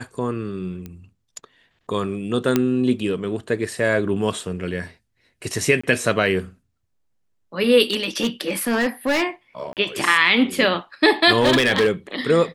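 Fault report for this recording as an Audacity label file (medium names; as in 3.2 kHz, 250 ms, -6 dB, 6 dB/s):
0.860000	0.860000	pop -21 dBFS
2.560000	2.560000	pop -4 dBFS
5.810000	5.830000	dropout 25 ms
7.900000	9.230000	clipped -15 dBFS
9.730000	9.770000	dropout 38 ms
11.410000	11.910000	clipped -11.5 dBFS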